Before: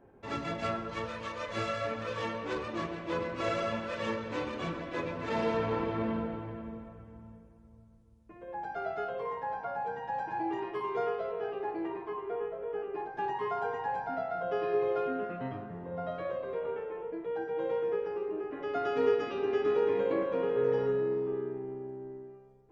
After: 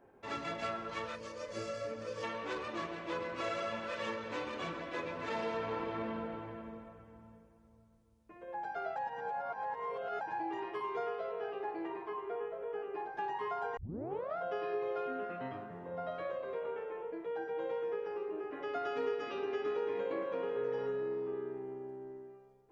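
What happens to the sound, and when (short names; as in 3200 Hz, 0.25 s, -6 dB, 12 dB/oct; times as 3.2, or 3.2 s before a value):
1.16–2.23 spectral gain 620–4300 Hz -10 dB
8.96–10.21 reverse
13.77 tape start 0.61 s
whole clip: low shelf 290 Hz -10 dB; compressor 2:1, threshold -36 dBFS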